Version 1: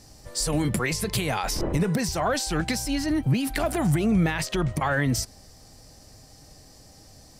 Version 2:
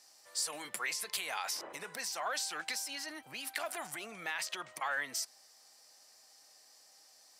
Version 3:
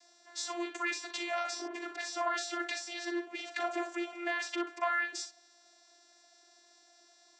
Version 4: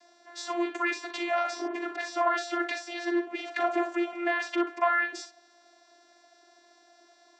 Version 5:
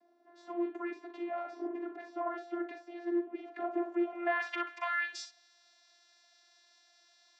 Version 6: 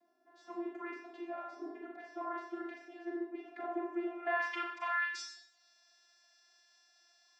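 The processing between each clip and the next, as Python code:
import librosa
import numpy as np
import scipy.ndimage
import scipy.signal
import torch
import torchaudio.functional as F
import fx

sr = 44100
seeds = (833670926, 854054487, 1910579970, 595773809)

y1 = scipy.signal.sosfilt(scipy.signal.butter(2, 950.0, 'highpass', fs=sr, output='sos'), x)
y1 = y1 * librosa.db_to_amplitude(-7.0)
y2 = fx.vocoder(y1, sr, bands=16, carrier='saw', carrier_hz=346.0)
y2 = fx.room_early_taps(y2, sr, ms=(41, 60), db=(-10.5, -11.5))
y2 = y2 * librosa.db_to_amplitude(4.5)
y3 = fx.lowpass(y2, sr, hz=1600.0, slope=6)
y3 = y3 * librosa.db_to_amplitude(8.5)
y4 = fx.low_shelf(y3, sr, hz=480.0, db=-3.0)
y4 = fx.filter_sweep_bandpass(y4, sr, from_hz=230.0, to_hz=3900.0, start_s=3.86, end_s=4.86, q=0.89)
y5 = fx.dereverb_blind(y4, sr, rt60_s=0.57)
y5 = fx.rev_schroeder(y5, sr, rt60_s=0.66, comb_ms=30, drr_db=0.5)
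y5 = y5 * librosa.db_to_amplitude(-3.5)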